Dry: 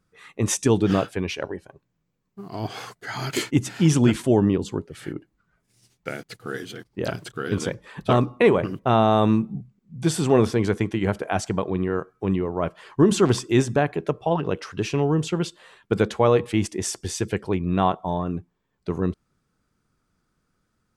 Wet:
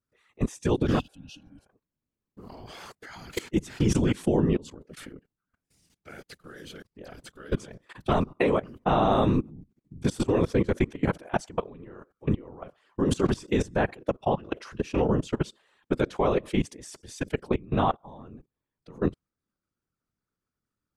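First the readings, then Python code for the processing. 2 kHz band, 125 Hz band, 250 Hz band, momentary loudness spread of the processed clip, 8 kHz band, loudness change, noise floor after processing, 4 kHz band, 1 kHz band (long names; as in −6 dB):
−5.5 dB, −5.5 dB, −5.0 dB, 21 LU, −11.5 dB, −4.5 dB, below −85 dBFS, −7.5 dB, −4.0 dB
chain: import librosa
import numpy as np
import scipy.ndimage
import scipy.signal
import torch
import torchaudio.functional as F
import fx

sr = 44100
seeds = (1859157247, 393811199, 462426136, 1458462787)

y = fx.level_steps(x, sr, step_db=22)
y = fx.whisperise(y, sr, seeds[0])
y = fx.spec_repair(y, sr, seeds[1], start_s=1.02, length_s=0.6, low_hz=310.0, high_hz=2500.0, source='after')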